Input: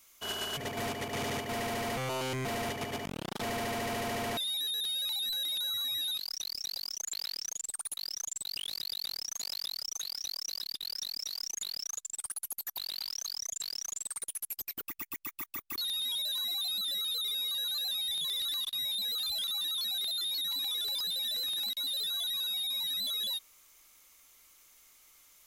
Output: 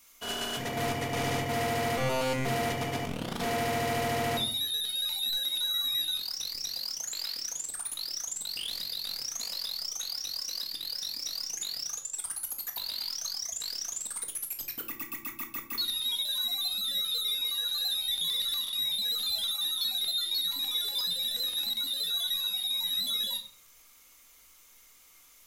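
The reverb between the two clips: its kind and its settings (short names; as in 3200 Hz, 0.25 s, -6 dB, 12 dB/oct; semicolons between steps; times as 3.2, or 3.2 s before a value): shoebox room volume 540 m³, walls furnished, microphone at 1.8 m; gain +1 dB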